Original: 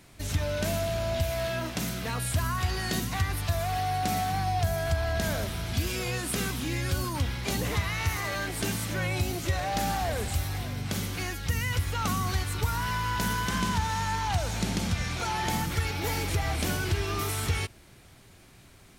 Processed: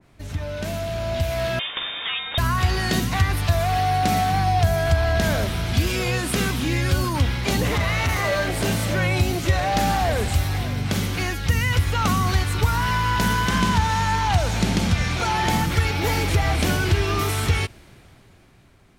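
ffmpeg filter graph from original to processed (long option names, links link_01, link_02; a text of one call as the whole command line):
ffmpeg -i in.wav -filter_complex "[0:a]asettb=1/sr,asplit=3[link_01][link_02][link_03];[link_01]atrim=end=1.594[link_04];[link_02]atrim=start=1.59:end=2.38,asetpts=PTS-STARTPTS,afade=type=in:duration=0.004:curve=qsin,afade=type=out:start_time=0.786:duration=0.004:curve=qsin,highpass=frequency=250:poles=1,lowpass=frequency=3200:width_type=q:width=0.5098,lowpass=frequency=3200:width_type=q:width=0.6013,lowpass=frequency=3200:width_type=q:width=0.9,lowpass=frequency=3200:width_type=q:width=2.563,afreqshift=-3800[link_05];[link_03]atrim=start=2.376[link_06];[link_04][link_05]acrossfade=duration=0.004:curve1=hsin:curve2=qsin[link_07];[link_07][link_06]acrossfade=duration=0.004:curve1=qsin:curve2=hsin,asettb=1/sr,asplit=3[link_08][link_09][link_10];[link_08]atrim=end=7.754[link_11];[link_09]atrim=start=7.75:end=8.95,asetpts=PTS-STARTPTS,afade=type=in:duration=0.004:curve=qsin,afade=type=out:start_time=1.196:duration=0.004:curve=qsin,equalizer=frequency=580:width_type=o:width=0.5:gain=8,volume=26dB,asoftclip=hard,volume=-26dB,asplit=2[link_12][link_13];[link_13]adelay=35,volume=-10.5dB[link_14];[link_12][link_14]amix=inputs=2:normalize=0,atrim=end_sample=52920[link_15];[link_10]atrim=start=8.946[link_16];[link_11][link_15]acrossfade=duration=0.004:curve1=hsin:curve2=qsin[link_17];[link_17][link_16]acrossfade=duration=0.004:curve1=qsin:curve2=hsin,highshelf=frequency=3600:gain=-11.5,dynaudnorm=framelen=280:gausssize=9:maxgain=8.5dB,adynamicequalizer=threshold=0.01:dfrequency=2100:dqfactor=0.7:tfrequency=2100:tqfactor=0.7:attack=5:release=100:ratio=0.375:range=2.5:mode=boostabove:tftype=highshelf" out.wav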